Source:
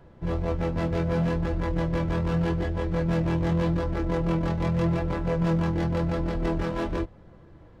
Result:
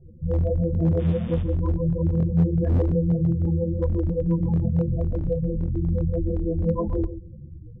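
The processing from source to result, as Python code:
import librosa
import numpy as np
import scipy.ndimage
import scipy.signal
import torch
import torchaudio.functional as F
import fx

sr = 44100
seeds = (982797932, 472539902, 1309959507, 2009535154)

p1 = fx.octave_divider(x, sr, octaves=2, level_db=-2.0, at=(4.86, 6.23))
p2 = fx.spec_topn(p1, sr, count=8)
p3 = fx.dmg_buzz(p2, sr, base_hz=120.0, harmonics=30, level_db=-46.0, tilt_db=-3, odd_only=False, at=(0.98, 1.41), fade=0.02)
p4 = fx.over_compress(p3, sr, threshold_db=-29.0, ratio=-0.5)
p5 = p3 + F.gain(torch.from_numpy(p4), -0.5).numpy()
p6 = fx.low_shelf(p5, sr, hz=210.0, db=11.5)
p7 = fx.chorus_voices(p6, sr, voices=4, hz=1.4, base_ms=11, depth_ms=3.0, mix_pct=55)
p8 = p7 + fx.echo_feedback(p7, sr, ms=135, feedback_pct=16, wet_db=-12, dry=0)
p9 = fx.clip_asym(p8, sr, top_db=-11.0, bottom_db=-7.0)
y = fx.low_shelf(p9, sr, hz=98.0, db=-12.0)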